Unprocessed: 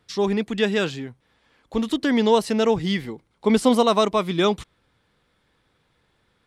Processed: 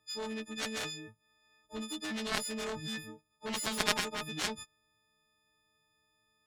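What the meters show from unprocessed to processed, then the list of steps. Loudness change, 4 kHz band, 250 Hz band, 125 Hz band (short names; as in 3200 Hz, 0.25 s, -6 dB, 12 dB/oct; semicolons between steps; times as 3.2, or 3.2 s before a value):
-14.5 dB, -7.5 dB, -19.0 dB, -17.0 dB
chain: frequency quantiser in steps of 6 st; added harmonics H 3 -7 dB, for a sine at -3 dBFS; gain -6 dB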